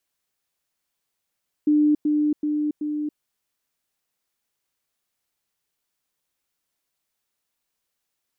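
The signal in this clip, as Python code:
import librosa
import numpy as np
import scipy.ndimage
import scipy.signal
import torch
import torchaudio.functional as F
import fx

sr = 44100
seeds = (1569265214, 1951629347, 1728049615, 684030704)

y = fx.level_ladder(sr, hz=299.0, from_db=-14.5, step_db=-3.0, steps=4, dwell_s=0.28, gap_s=0.1)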